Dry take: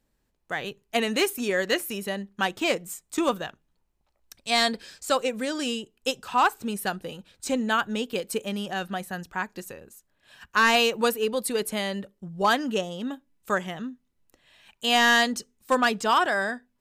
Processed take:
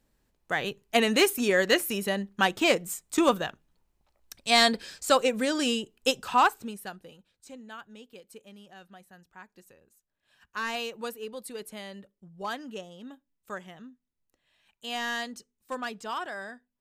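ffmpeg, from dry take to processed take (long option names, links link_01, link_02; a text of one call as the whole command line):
ffmpeg -i in.wav -af "volume=9dB,afade=type=out:start_time=6.28:duration=0.47:silence=0.251189,afade=type=out:start_time=6.75:duration=0.77:silence=0.334965,afade=type=in:start_time=9.25:duration=1.32:silence=0.446684" out.wav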